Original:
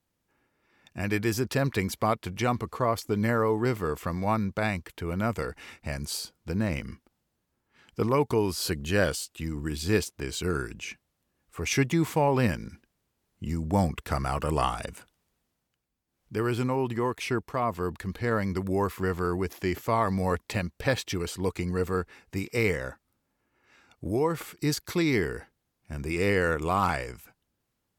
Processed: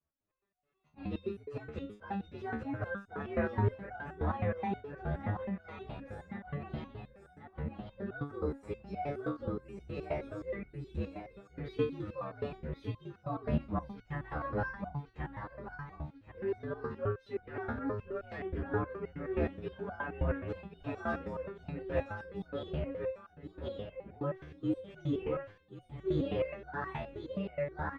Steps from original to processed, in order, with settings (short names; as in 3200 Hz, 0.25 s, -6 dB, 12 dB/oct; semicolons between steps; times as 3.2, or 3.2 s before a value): inharmonic rescaling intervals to 121%; LPF 1700 Hz 12 dB/oct; feedback echo 1.086 s, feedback 40%, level -3 dB; stepped resonator 9.5 Hz 75–730 Hz; gain +4.5 dB